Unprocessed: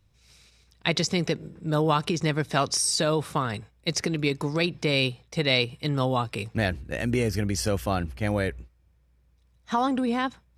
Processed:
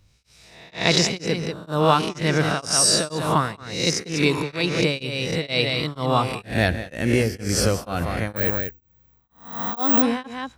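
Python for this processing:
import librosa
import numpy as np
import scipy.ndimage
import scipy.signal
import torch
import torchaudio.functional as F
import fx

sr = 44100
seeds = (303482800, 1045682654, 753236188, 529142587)

y = fx.spec_swells(x, sr, rise_s=0.63)
y = y + 10.0 ** (-8.5 / 20.0) * np.pad(y, (int(193 * sr / 1000.0), 0))[:len(y)]
y = fx.resample_bad(y, sr, factor=2, down='none', up='zero_stuff', at=(8.36, 10.02))
y = y * np.abs(np.cos(np.pi * 2.1 * np.arange(len(y)) / sr))
y = F.gain(torch.from_numpy(y), 4.5).numpy()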